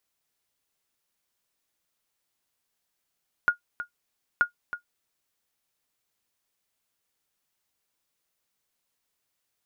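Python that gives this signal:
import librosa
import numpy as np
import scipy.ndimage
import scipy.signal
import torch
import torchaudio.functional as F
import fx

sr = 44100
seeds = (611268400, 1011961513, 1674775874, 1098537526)

y = fx.sonar_ping(sr, hz=1430.0, decay_s=0.11, every_s=0.93, pings=2, echo_s=0.32, echo_db=-12.5, level_db=-11.5)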